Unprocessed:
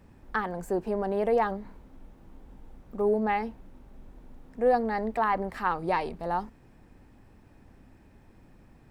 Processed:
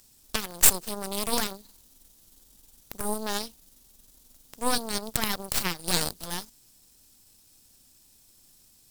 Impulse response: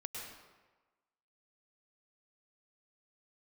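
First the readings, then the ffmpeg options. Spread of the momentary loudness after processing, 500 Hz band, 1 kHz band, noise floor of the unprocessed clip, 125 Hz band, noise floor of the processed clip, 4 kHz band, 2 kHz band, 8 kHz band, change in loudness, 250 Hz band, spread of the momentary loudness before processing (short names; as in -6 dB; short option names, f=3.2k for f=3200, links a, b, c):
16 LU, -9.0 dB, -7.0 dB, -56 dBFS, +0.5 dB, -59 dBFS, +20.0 dB, 0.0 dB, n/a, +1.5 dB, -3.0 dB, 10 LU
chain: -af "aexciter=amount=8.5:drive=9.8:freq=3.2k,aemphasis=mode=production:type=cd,aeval=exprs='1*(cos(1*acos(clip(val(0)/1,-1,1)))-cos(1*PI/2))+0.02*(cos(5*acos(clip(val(0)/1,-1,1)))-cos(5*PI/2))+0.224*(cos(6*acos(clip(val(0)/1,-1,1)))-cos(6*PI/2))+0.126*(cos(7*acos(clip(val(0)/1,-1,1)))-cos(7*PI/2))+0.316*(cos(8*acos(clip(val(0)/1,-1,1)))-cos(8*PI/2))':c=same,volume=-1.5dB"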